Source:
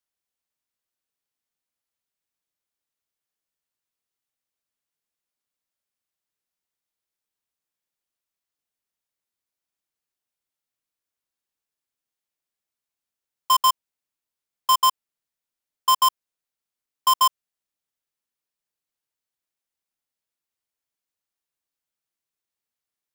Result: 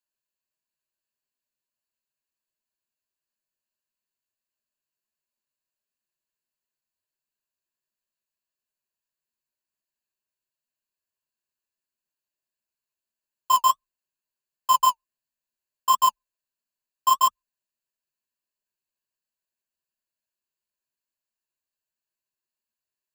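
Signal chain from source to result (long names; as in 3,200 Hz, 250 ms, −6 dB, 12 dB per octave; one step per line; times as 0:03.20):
EQ curve with evenly spaced ripples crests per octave 1.4, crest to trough 11 dB
flanger 1.5 Hz, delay 3.7 ms, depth 7.8 ms, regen −30%
level −1.5 dB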